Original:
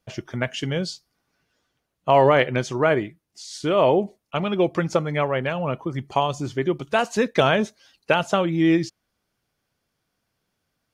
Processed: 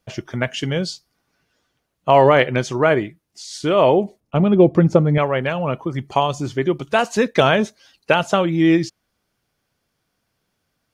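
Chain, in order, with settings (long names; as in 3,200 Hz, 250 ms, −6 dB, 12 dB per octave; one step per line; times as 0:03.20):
0:04.20–0:05.18: tilt shelving filter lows +9 dB, about 740 Hz
level +3.5 dB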